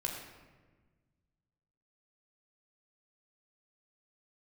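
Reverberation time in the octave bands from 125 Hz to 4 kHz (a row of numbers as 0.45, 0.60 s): 2.4, 2.0, 1.5, 1.2, 1.2, 0.85 s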